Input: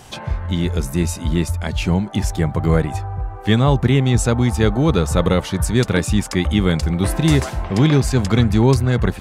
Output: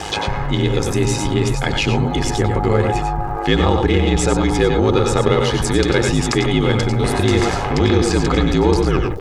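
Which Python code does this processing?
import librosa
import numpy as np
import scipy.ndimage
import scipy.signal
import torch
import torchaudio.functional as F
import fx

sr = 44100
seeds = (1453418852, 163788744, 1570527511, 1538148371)

p1 = fx.tape_stop_end(x, sr, length_s=0.34)
p2 = np.clip(p1, -10.0 ** (-17.5 / 20.0), 10.0 ** (-17.5 / 20.0))
p3 = p1 + (p2 * librosa.db_to_amplitude(-3.5))
p4 = fx.bandpass_edges(p3, sr, low_hz=130.0, high_hz=6600.0)
p5 = p4 * np.sin(2.0 * np.pi * 52.0 * np.arange(len(p4)) / sr)
p6 = p5 + 0.5 * np.pad(p5, (int(2.4 * sr / 1000.0), 0))[:len(p5)]
p7 = fx.dmg_crackle(p6, sr, seeds[0], per_s=140.0, level_db=-48.0)
p8 = p7 + fx.echo_multitap(p7, sr, ms=(94, 102, 111), db=(-8.5, -18.0, -10.5), dry=0)
p9 = fx.env_flatten(p8, sr, amount_pct=50)
y = p9 * librosa.db_to_amplitude(-1.0)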